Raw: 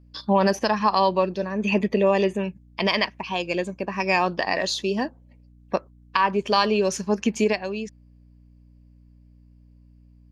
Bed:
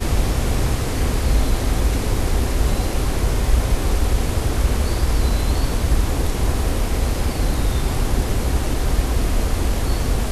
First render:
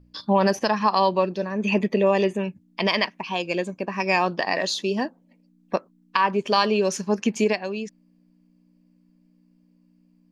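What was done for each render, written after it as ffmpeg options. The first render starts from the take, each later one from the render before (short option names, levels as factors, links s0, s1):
-af "bandreject=f=60:t=h:w=4,bandreject=f=120:t=h:w=4"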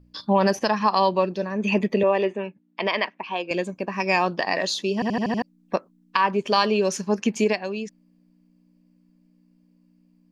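-filter_complex "[0:a]asettb=1/sr,asplit=3[s0][s1][s2];[s0]atrim=end=2.034[s3];[s1]atrim=start=2.03:end=3.51,asetpts=PTS-STARTPTS,afade=t=in:d=0.004:c=qsin,afade=t=out:st=1.476:d=0.004:c=qsin,highpass=290,lowpass=2900[s4];[s2]atrim=start=3.506[s5];[s3][s4]acrossfade=d=0.004:c1=hsin:c2=qsin[s6];[s6][s5]acrossfade=d=0.004:c1=qsin:c2=hsin,asplit=7[s7][s8][s9][s10][s11][s12][s13];[s7]atrim=end=5.022[s14];[s8]atrim=start=4.938:end=5.022[s15];[s9]atrim=start=4.938:end=5.022[s16];[s10]atrim=start=4.938:end=5.022[s17];[s11]atrim=start=4.938:end=5.022[s18];[s12]atrim=start=4.938:end=5.022[s19];[s13]atrim=start=5.418[s20];[s14][s15]acrossfade=d=0.004:c1=hsin:c2=hsin[s21];[s21][s16]acrossfade=d=0.004:c1=hsin:c2=hsin[s22];[s22][s17]acrossfade=d=0.004:c1=hsin:c2=hsin[s23];[s23][s18]acrossfade=d=0.004:c1=hsin:c2=hsin[s24];[s24][s19]acrossfade=d=0.004:c1=hsin:c2=hsin[s25];[s25][s20]acrossfade=d=0.004:c1=hsin:c2=hsin"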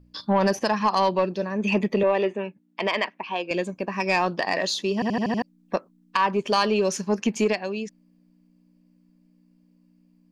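-af "asoftclip=type=tanh:threshold=0.282"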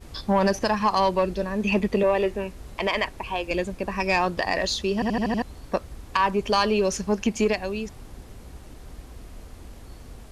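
-filter_complex "[1:a]volume=0.0708[s0];[0:a][s0]amix=inputs=2:normalize=0"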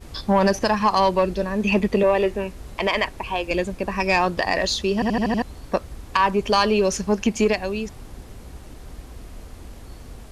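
-af "volume=1.41"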